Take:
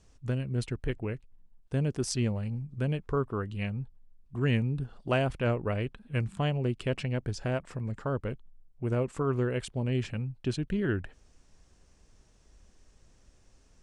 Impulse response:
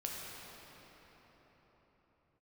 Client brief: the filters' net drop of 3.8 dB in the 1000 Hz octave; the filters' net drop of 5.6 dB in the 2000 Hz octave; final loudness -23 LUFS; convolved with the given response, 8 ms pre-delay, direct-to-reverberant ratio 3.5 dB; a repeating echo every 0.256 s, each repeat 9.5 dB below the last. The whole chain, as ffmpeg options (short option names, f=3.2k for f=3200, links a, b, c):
-filter_complex "[0:a]equalizer=f=1k:t=o:g=-3.5,equalizer=f=2k:t=o:g=-6.5,aecho=1:1:256|512|768|1024:0.335|0.111|0.0365|0.012,asplit=2[a][b];[1:a]atrim=start_sample=2205,adelay=8[c];[b][c]afir=irnorm=-1:irlink=0,volume=-5dB[d];[a][d]amix=inputs=2:normalize=0,volume=6.5dB"